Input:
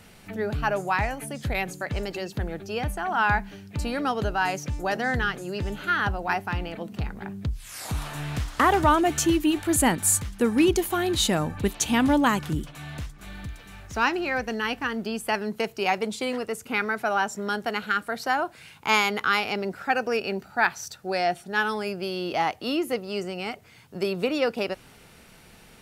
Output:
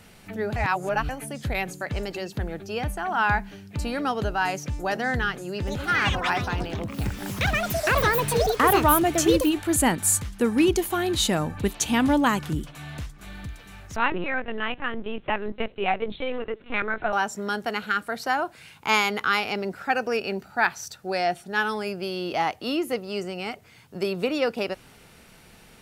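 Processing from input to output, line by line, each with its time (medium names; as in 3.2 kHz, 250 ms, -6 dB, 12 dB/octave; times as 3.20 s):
0.56–1.09 s: reverse
5.49–10.89 s: ever faster or slower copies 183 ms, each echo +6 st, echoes 2
13.96–17.13 s: LPC vocoder at 8 kHz pitch kept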